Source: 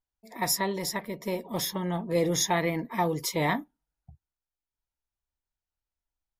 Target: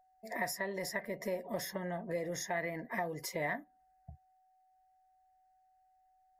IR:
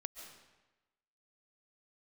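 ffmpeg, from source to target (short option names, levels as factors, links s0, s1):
-af "acompressor=threshold=0.0112:ratio=6,aeval=exprs='val(0)+0.000398*sin(2*PI*750*n/s)':c=same,superequalizer=7b=1.41:8b=2.82:11b=3.16:13b=0.501"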